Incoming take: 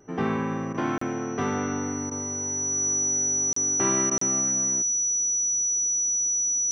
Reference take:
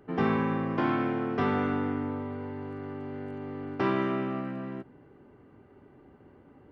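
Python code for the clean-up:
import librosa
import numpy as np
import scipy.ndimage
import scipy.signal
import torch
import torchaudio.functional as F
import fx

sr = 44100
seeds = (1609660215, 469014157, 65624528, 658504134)

y = fx.notch(x, sr, hz=5900.0, q=30.0)
y = fx.fix_interpolate(y, sr, at_s=(0.98, 3.53, 4.18), length_ms=34.0)
y = fx.fix_interpolate(y, sr, at_s=(0.73, 2.1, 4.1), length_ms=12.0)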